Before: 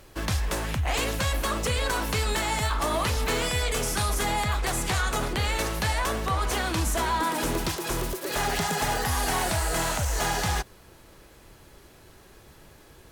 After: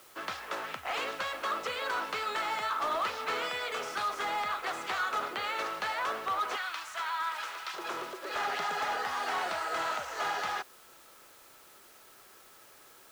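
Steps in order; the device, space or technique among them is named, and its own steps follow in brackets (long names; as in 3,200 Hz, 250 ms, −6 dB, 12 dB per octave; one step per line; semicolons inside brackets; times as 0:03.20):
0:06.56–0:07.74: high-pass filter 1,200 Hz 12 dB per octave
drive-through speaker (band-pass filter 490–3,700 Hz; parametric band 1,300 Hz +9 dB 0.22 octaves; hard clipping −21.5 dBFS, distortion −20 dB; white noise bed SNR 23 dB)
level −4.5 dB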